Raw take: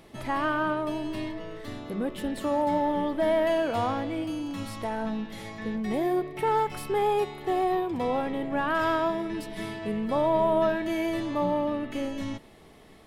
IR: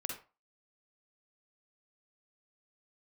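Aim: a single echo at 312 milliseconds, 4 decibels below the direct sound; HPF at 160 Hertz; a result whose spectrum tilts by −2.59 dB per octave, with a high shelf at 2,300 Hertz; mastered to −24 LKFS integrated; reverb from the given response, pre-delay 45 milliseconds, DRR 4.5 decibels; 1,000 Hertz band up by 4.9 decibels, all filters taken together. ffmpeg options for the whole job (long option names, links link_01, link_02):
-filter_complex "[0:a]highpass=160,equalizer=frequency=1000:width_type=o:gain=4.5,highshelf=frequency=2300:gain=8.5,aecho=1:1:312:0.631,asplit=2[link_01][link_02];[1:a]atrim=start_sample=2205,adelay=45[link_03];[link_02][link_03]afir=irnorm=-1:irlink=0,volume=-5dB[link_04];[link_01][link_04]amix=inputs=2:normalize=0,volume=-1dB"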